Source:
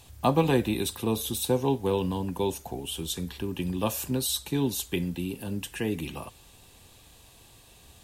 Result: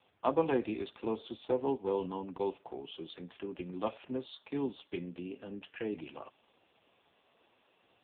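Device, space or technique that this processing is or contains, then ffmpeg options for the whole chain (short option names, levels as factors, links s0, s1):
telephone: -filter_complex "[0:a]asplit=3[s0][s1][s2];[s0]afade=t=out:st=2.97:d=0.02[s3];[s1]highpass=100,afade=t=in:st=2.97:d=0.02,afade=t=out:st=3.75:d=0.02[s4];[s2]afade=t=in:st=3.75:d=0.02[s5];[s3][s4][s5]amix=inputs=3:normalize=0,highpass=300,lowpass=3000,volume=0.668" -ar 8000 -c:a libopencore_amrnb -b:a 5150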